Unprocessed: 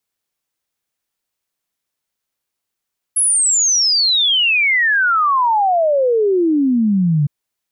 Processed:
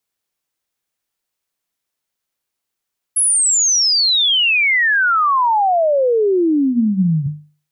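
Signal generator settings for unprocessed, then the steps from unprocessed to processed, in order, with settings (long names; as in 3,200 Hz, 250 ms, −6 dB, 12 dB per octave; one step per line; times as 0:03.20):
exponential sine sweep 11,000 Hz → 140 Hz 4.11 s −11.5 dBFS
mains-hum notches 50/100/150/200/250 Hz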